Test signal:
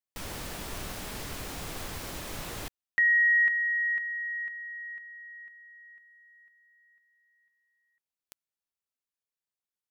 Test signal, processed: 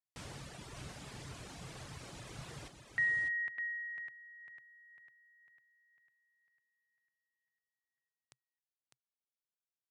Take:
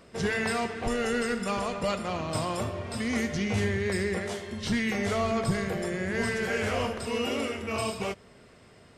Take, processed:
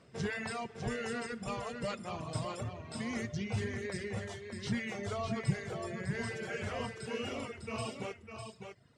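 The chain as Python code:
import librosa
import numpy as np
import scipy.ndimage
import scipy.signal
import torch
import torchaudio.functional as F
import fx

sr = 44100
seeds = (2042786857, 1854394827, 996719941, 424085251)

y = scipy.signal.sosfilt(scipy.signal.butter(4, 9400.0, 'lowpass', fs=sr, output='sos'), x)
y = fx.dereverb_blind(y, sr, rt60_s=1.7)
y = scipy.signal.sosfilt(scipy.signal.butter(2, 44.0, 'highpass', fs=sr, output='sos'), y)
y = fx.peak_eq(y, sr, hz=130.0, db=11.0, octaves=0.47)
y = y + 10.0 ** (-6.5 / 20.0) * np.pad(y, (int(603 * sr / 1000.0), 0))[:len(y)]
y = F.gain(torch.from_numpy(y), -8.0).numpy()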